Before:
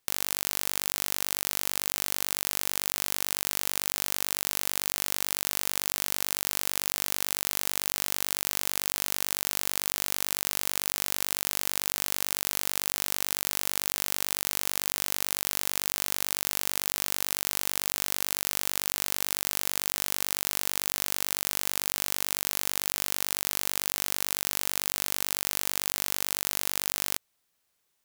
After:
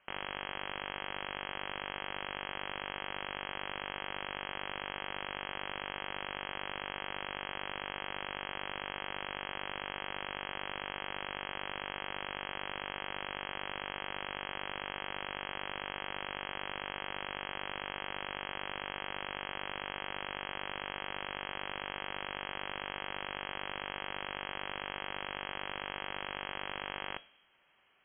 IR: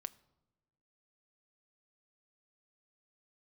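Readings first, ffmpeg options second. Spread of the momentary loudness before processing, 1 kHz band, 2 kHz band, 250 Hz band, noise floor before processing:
0 LU, 0.0 dB, -2.0 dB, -4.5 dB, -75 dBFS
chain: -filter_complex "[0:a]aresample=11025,asoftclip=type=tanh:threshold=-30dB,aresample=44100[a];[1:a]atrim=start_sample=2205[b];[a][b]afir=irnorm=-1:irlink=0,lowpass=f=2.8k:t=q:w=0.5098,lowpass=f=2.8k:t=q:w=0.6013,lowpass=f=2.8k:t=q:w=0.9,lowpass=f=2.8k:t=q:w=2.563,afreqshift=-3300,volume=17dB"

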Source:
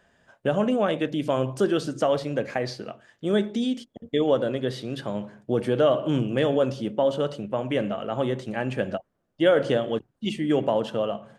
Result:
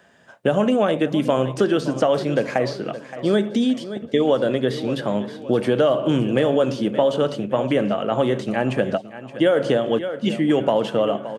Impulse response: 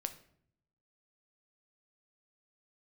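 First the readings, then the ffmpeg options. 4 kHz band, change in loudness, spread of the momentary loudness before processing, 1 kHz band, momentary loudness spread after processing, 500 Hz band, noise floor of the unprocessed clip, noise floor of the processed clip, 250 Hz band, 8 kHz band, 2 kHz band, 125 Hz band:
+4.0 dB, +4.5 dB, 10 LU, +5.0 dB, 6 LU, +4.5 dB, -72 dBFS, -41 dBFS, +5.5 dB, n/a, +4.5 dB, +4.0 dB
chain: -filter_complex "[0:a]highpass=120,asplit=2[a][b];[b]aecho=0:1:570|1140|1710|2280:0.15|0.0643|0.0277|0.0119[c];[a][c]amix=inputs=2:normalize=0,acrossover=split=1200|2400|6400[d][e][f][g];[d]acompressor=threshold=-23dB:ratio=4[h];[e]acompressor=threshold=-41dB:ratio=4[i];[f]acompressor=threshold=-45dB:ratio=4[j];[g]acompressor=threshold=-57dB:ratio=4[k];[h][i][j][k]amix=inputs=4:normalize=0,volume=8dB"

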